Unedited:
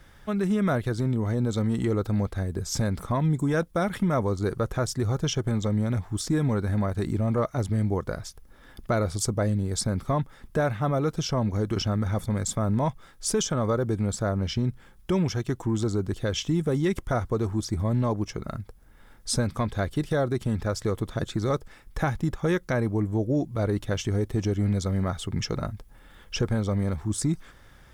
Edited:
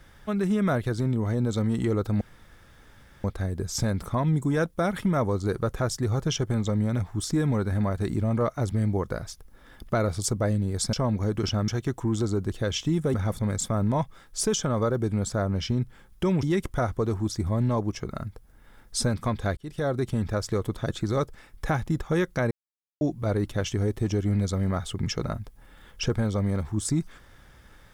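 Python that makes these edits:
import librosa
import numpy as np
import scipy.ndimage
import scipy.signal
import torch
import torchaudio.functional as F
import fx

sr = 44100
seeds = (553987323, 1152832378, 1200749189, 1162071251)

y = fx.edit(x, sr, fx.insert_room_tone(at_s=2.21, length_s=1.03),
    fx.cut(start_s=9.9, length_s=1.36),
    fx.move(start_s=15.3, length_s=1.46, to_s=12.01),
    fx.fade_in_span(start_s=19.9, length_s=0.51, curve='qsin'),
    fx.silence(start_s=22.84, length_s=0.5), tone=tone)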